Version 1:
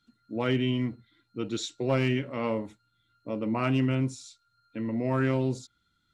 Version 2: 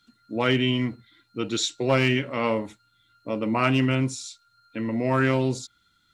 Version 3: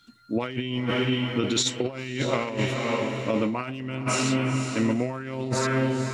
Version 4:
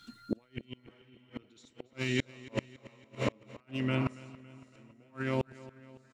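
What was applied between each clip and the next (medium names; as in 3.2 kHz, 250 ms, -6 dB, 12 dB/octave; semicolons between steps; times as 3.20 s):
tilt shelf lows -3.5 dB, about 740 Hz; trim +6 dB
echo that smears into a reverb 478 ms, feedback 44%, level -8 dB; compressor with a negative ratio -27 dBFS, ratio -0.5; trim +2 dB
inverted gate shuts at -19 dBFS, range -38 dB; feedback delay 280 ms, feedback 55%, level -19 dB; trim +2 dB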